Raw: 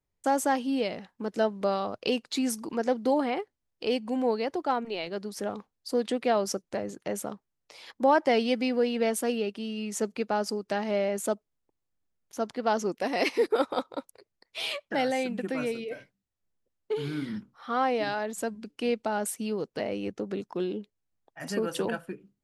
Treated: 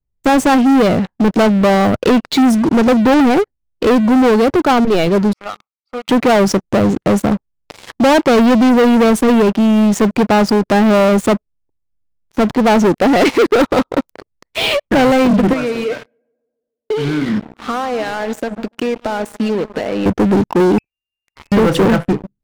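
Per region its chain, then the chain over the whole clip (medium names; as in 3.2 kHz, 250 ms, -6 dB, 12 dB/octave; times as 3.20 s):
5.33–6.09 s: two resonant band-passes 1.7 kHz, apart 0.84 oct + comb 1.5 ms, depth 32%
15.53–20.06 s: high-pass 710 Hz 6 dB/octave + compression, threshold -38 dBFS + tape echo 143 ms, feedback 70%, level -13.5 dB, low-pass 1.3 kHz
20.78–21.52 s: compression 4:1, threshold -52 dBFS + frequency inversion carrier 2.8 kHz
whole clip: RIAA curve playback; waveshaping leveller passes 5; trim +3 dB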